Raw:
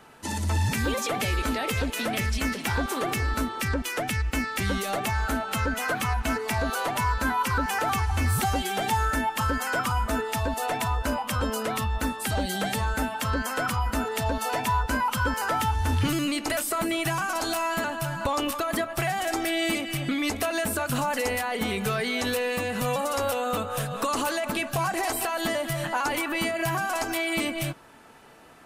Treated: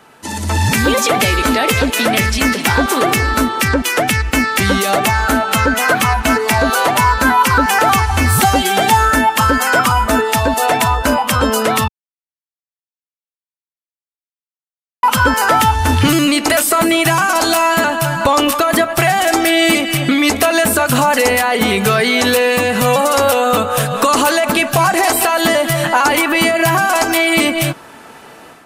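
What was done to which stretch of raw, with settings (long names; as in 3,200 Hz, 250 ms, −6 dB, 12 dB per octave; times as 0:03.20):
0:11.88–0:15.03: silence
whole clip: low-shelf EQ 73 Hz −11.5 dB; automatic gain control gain up to 8 dB; level +6.5 dB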